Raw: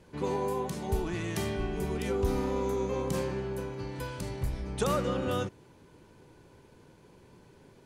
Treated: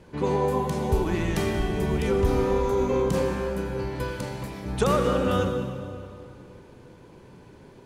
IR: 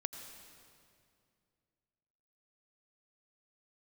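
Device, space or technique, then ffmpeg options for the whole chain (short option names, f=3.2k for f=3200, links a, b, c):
swimming-pool hall: -filter_complex "[0:a]asettb=1/sr,asplit=3[a][b][c];[a]atrim=end=4.214[d];[b]atrim=start=4.21:end=4.66,asetpts=PTS-STARTPTS,afade=t=in:d=0.004:c=qsin,afade=t=out:st=0.446:d=0.004:c=qsin,highpass=220[e];[c]atrim=start=4.656[f];[d][e]acrossfade=d=0.004:c1=hsin:c2=qsin[g];[g][f]acrossfade=d=0.004:c1=qsin:c2=hsin[h];[1:a]atrim=start_sample=2205[i];[h][i]afir=irnorm=-1:irlink=0,highshelf=f=4.3k:g=-6,volume=8dB"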